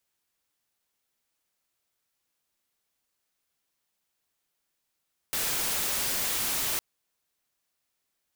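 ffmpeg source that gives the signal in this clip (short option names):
-f lavfi -i "anoisesrc=c=white:a=0.0614:d=1.46:r=44100:seed=1"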